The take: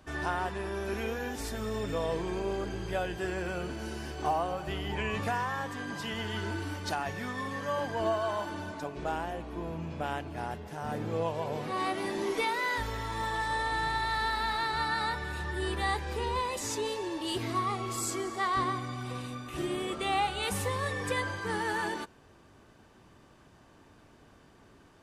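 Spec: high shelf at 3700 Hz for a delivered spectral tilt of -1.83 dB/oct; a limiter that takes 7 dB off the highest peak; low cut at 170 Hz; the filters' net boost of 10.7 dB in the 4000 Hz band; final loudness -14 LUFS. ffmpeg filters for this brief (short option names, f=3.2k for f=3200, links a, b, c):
-af "highpass=170,highshelf=f=3.7k:g=9,equalizer=f=4k:t=o:g=7.5,volume=17dB,alimiter=limit=-3dB:level=0:latency=1"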